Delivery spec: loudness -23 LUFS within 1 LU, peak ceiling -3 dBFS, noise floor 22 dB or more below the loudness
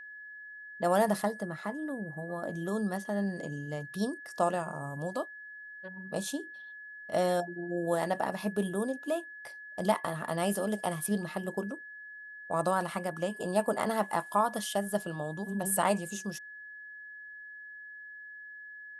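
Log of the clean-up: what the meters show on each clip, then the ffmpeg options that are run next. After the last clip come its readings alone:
steady tone 1.7 kHz; tone level -44 dBFS; loudness -32.5 LUFS; peak level -13.5 dBFS; loudness target -23.0 LUFS
-> -af "bandreject=f=1700:w=30"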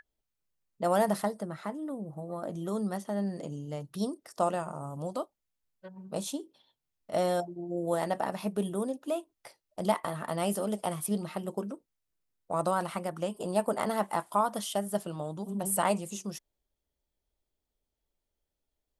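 steady tone not found; loudness -33.0 LUFS; peak level -13.5 dBFS; loudness target -23.0 LUFS
-> -af "volume=3.16"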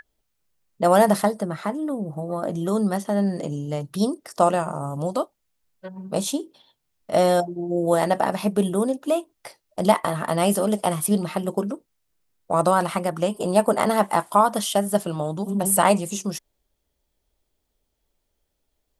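loudness -23.0 LUFS; peak level -3.5 dBFS; noise floor -75 dBFS

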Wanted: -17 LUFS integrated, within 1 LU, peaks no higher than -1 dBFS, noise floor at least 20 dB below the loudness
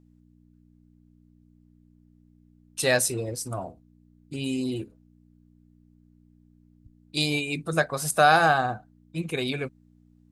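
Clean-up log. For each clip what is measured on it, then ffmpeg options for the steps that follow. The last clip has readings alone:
hum 60 Hz; highest harmonic 300 Hz; hum level -56 dBFS; loudness -25.5 LUFS; peak level -6.5 dBFS; loudness target -17.0 LUFS
-> -af "bandreject=f=60:t=h:w=4,bandreject=f=120:t=h:w=4,bandreject=f=180:t=h:w=4,bandreject=f=240:t=h:w=4,bandreject=f=300:t=h:w=4"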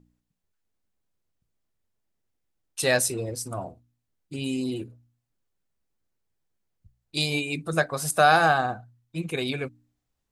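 hum not found; loudness -25.5 LUFS; peak level -6.5 dBFS; loudness target -17.0 LUFS
-> -af "volume=2.66,alimiter=limit=0.891:level=0:latency=1"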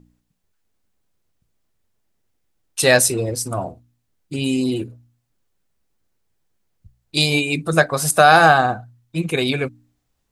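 loudness -17.5 LUFS; peak level -1.0 dBFS; noise floor -72 dBFS

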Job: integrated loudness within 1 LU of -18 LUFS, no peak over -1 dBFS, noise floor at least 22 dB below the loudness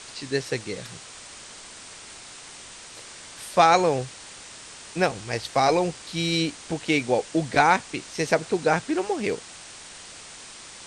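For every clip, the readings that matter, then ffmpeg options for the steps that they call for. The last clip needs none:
noise floor -44 dBFS; noise floor target -46 dBFS; loudness -24.0 LUFS; peak level -4.0 dBFS; loudness target -18.0 LUFS
-> -af "afftdn=nr=6:nf=-44"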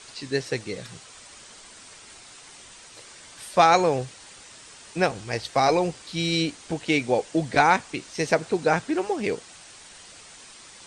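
noise floor -47 dBFS; loudness -24.0 LUFS; peak level -4.0 dBFS; loudness target -18.0 LUFS
-> -af "volume=2,alimiter=limit=0.891:level=0:latency=1"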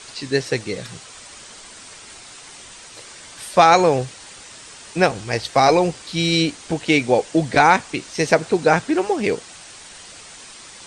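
loudness -18.5 LUFS; peak level -1.0 dBFS; noise floor -41 dBFS

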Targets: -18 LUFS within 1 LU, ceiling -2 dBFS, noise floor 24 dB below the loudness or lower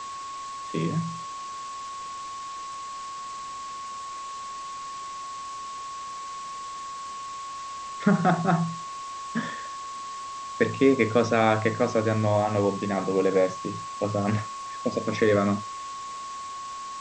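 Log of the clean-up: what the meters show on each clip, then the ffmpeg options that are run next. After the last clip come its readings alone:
steady tone 1.1 kHz; tone level -34 dBFS; noise floor -37 dBFS; noise floor target -53 dBFS; loudness -28.5 LUFS; peak level -7.0 dBFS; loudness target -18.0 LUFS
-> -af "bandreject=f=1100:w=30"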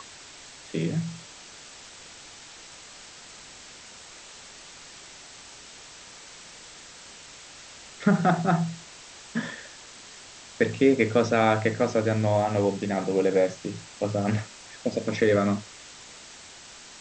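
steady tone not found; noise floor -47 dBFS; noise floor target -50 dBFS
-> -af "afftdn=nr=6:nf=-47"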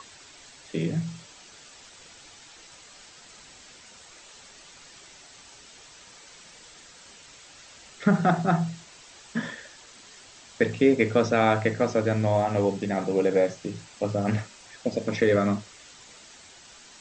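noise floor -50 dBFS; loudness -25.5 LUFS; peak level -7.5 dBFS; loudness target -18.0 LUFS
-> -af "volume=2.37,alimiter=limit=0.794:level=0:latency=1"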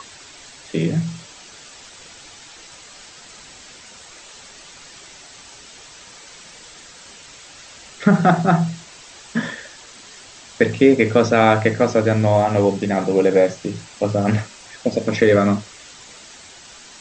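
loudness -18.0 LUFS; peak level -2.0 dBFS; noise floor -43 dBFS

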